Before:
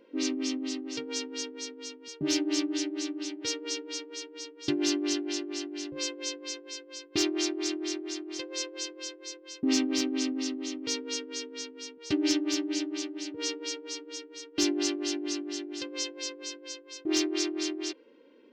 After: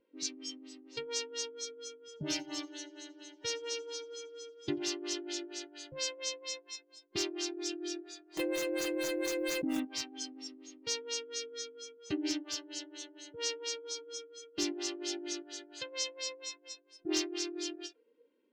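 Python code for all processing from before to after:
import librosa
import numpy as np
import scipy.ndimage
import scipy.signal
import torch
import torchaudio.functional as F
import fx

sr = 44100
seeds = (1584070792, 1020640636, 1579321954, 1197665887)

y = fx.chain(x, sr, fx.high_shelf(hz=4200.0, db=-5.5),
    fx.echo_feedback(ms=88, feedback_pct=57, wet_db=-18.0), at=(2.02, 4.83))
y = fx.chain(y, sr, fx.median_filter(points=9),
    fx.comb(ms=6.2, depth=0.51),
    fx.env_flatten(amount_pct=100), at=(8.37, 9.8))
y = fx.noise_reduce_blind(y, sr, reduce_db=17)
y = fx.rider(y, sr, range_db=4, speed_s=0.5)
y = fx.end_taper(y, sr, db_per_s=360.0)
y = y * 10.0 ** (-4.5 / 20.0)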